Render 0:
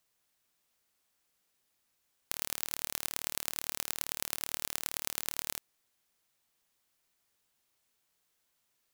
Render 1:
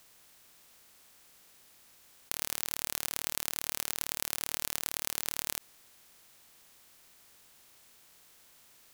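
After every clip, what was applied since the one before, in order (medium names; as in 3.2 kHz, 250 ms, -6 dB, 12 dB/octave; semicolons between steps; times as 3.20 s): spectral levelling over time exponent 0.6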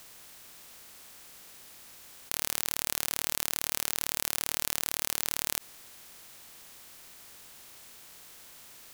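loudness maximiser +10 dB; trim -1 dB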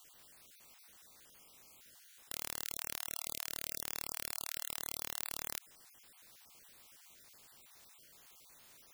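random holes in the spectrogram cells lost 32%; trim -8 dB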